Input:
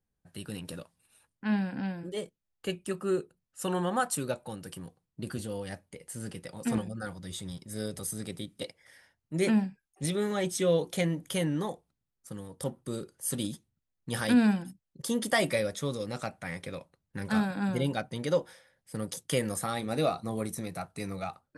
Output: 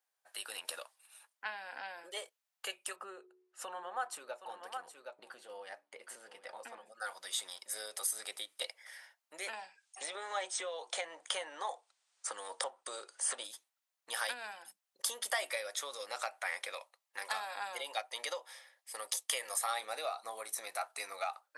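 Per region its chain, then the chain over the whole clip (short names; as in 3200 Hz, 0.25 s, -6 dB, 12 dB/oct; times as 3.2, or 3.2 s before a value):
2.96–6.92 RIAA curve playback + de-hum 73.25 Hz, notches 6 + echo 0.768 s -15 dB
9.53–13.44 steep low-pass 9500 Hz 96 dB/oct + dynamic EQ 800 Hz, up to +7 dB, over -44 dBFS, Q 0.71 + three-band squash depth 70%
16.72–19.7 low shelf 350 Hz -8 dB + notch 1500 Hz, Q 6.4
whole clip: compressor 6:1, threshold -35 dBFS; HPF 680 Hz 24 dB/oct; gain +5.5 dB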